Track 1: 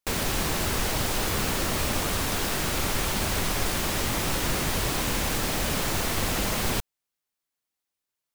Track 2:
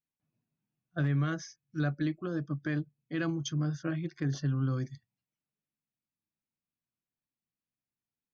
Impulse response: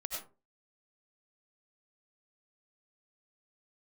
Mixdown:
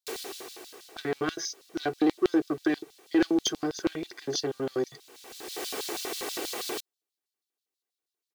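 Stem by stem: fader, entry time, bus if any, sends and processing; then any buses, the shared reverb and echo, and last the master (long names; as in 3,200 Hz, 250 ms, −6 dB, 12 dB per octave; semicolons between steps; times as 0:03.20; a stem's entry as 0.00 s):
−8.5 dB, 0.00 s, no send, automatic ducking −23 dB, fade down 1.20 s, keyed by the second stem
+1.5 dB, 0.00 s, no send, leveller curve on the samples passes 2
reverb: not used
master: comb filter 2.6 ms, depth 53%; auto-filter high-pass square 6.2 Hz 390–4,000 Hz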